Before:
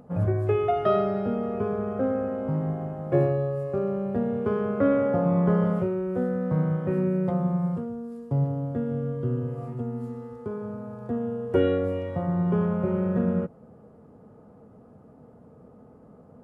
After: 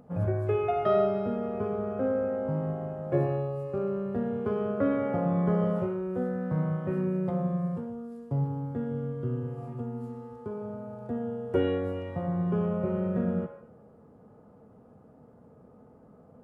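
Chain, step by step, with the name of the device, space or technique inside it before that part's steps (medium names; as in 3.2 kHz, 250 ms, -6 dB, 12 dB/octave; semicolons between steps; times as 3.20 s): filtered reverb send (on a send: high-pass 510 Hz 24 dB/octave + low-pass 3.1 kHz 12 dB/octave + reverberation RT60 0.70 s, pre-delay 33 ms, DRR 5.5 dB); on the sum: trim -4 dB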